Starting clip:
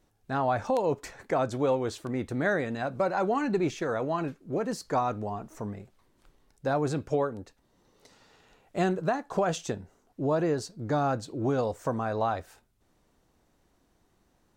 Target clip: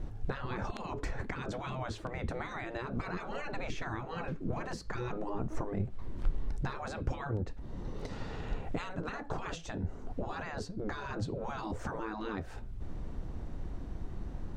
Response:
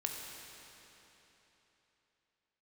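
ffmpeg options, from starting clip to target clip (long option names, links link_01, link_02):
-af "afftfilt=real='re*lt(hypot(re,im),0.0631)':imag='im*lt(hypot(re,im),0.0631)':win_size=1024:overlap=0.75,acompressor=threshold=-56dB:ratio=4,aemphasis=mode=reproduction:type=riaa,volume=16dB"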